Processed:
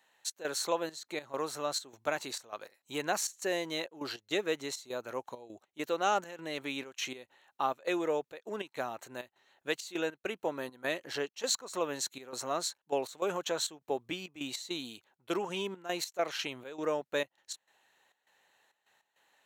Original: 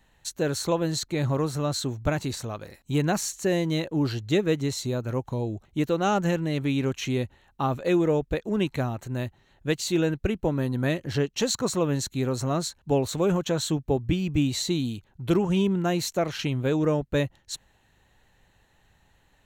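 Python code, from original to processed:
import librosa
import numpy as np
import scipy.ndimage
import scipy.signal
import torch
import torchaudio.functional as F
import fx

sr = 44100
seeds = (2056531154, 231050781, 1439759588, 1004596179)

y = fx.step_gate(x, sr, bpm=101, pattern='xx.xxx.x.x', floor_db=-12.0, edge_ms=4.5)
y = scipy.signal.sosfilt(scipy.signal.butter(2, 550.0, 'highpass', fs=sr, output='sos'), y)
y = y * 10.0 ** (-2.5 / 20.0)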